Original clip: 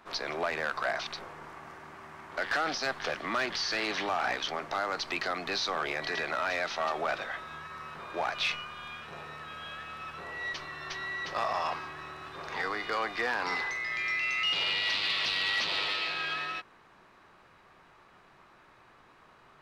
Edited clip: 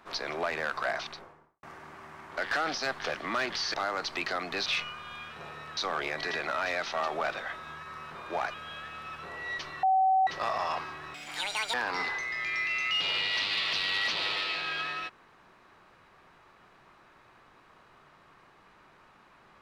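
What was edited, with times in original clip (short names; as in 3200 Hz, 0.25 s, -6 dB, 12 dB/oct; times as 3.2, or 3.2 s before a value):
0.93–1.63 studio fade out
3.74–4.69 cut
8.38–9.49 move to 5.61
10.78–11.22 bleep 761 Hz -20.5 dBFS
12.09–13.26 speed 196%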